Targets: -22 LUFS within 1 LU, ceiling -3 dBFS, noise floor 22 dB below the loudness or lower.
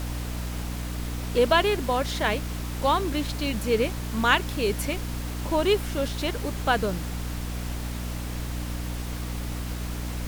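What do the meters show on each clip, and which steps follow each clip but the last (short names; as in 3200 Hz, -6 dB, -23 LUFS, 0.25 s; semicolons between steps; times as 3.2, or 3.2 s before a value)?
hum 60 Hz; harmonics up to 300 Hz; hum level -30 dBFS; noise floor -32 dBFS; noise floor target -50 dBFS; loudness -27.5 LUFS; peak -5.5 dBFS; loudness target -22.0 LUFS
-> de-hum 60 Hz, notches 5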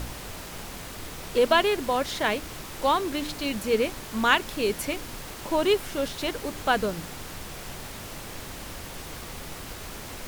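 hum none; noise floor -40 dBFS; noise floor target -50 dBFS
-> noise print and reduce 10 dB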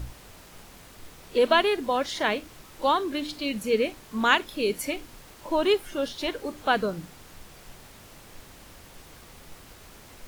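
noise floor -50 dBFS; loudness -26.0 LUFS; peak -5.5 dBFS; loudness target -22.0 LUFS
-> gain +4 dB; limiter -3 dBFS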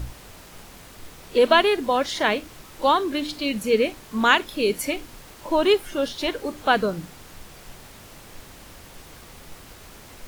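loudness -22.5 LUFS; peak -3.0 dBFS; noise floor -46 dBFS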